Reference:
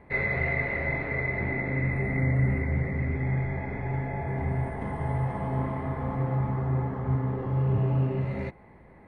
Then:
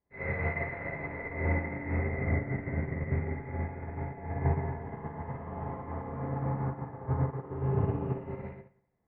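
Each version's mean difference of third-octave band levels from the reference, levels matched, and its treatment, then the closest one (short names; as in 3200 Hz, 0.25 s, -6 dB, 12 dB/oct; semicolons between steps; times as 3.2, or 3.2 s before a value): 3.5 dB: LPF 1900 Hz 12 dB/oct; spring tank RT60 1.2 s, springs 48/59 ms, chirp 60 ms, DRR -6.5 dB; upward expander 2.5:1, over -39 dBFS; gain -3.5 dB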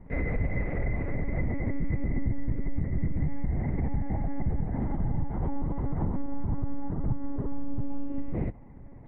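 5.0 dB: tilt -4 dB/oct; monotone LPC vocoder at 8 kHz 280 Hz; compressor, threshold -17 dBFS, peak gain reduction 8 dB; gain -6 dB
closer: first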